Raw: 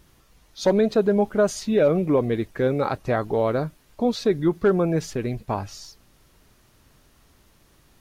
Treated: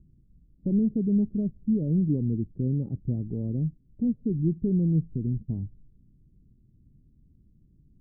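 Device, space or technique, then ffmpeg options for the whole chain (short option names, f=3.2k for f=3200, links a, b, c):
the neighbour's flat through the wall: -af "lowpass=f=260:w=0.5412,lowpass=f=260:w=1.3066,equalizer=f=150:t=o:w=0.77:g=3.5"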